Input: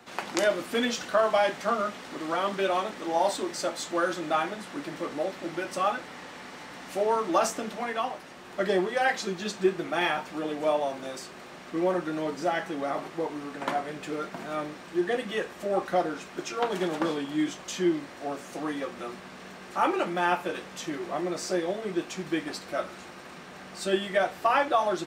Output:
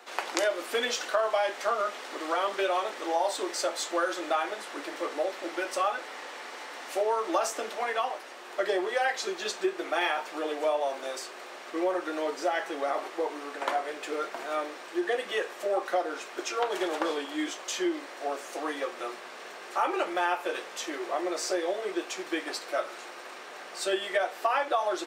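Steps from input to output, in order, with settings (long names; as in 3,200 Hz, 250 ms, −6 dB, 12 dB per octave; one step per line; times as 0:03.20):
high-pass filter 370 Hz 24 dB per octave
downward compressor 3 to 1, threshold −27 dBFS, peak gain reduction 6.5 dB
level +2.5 dB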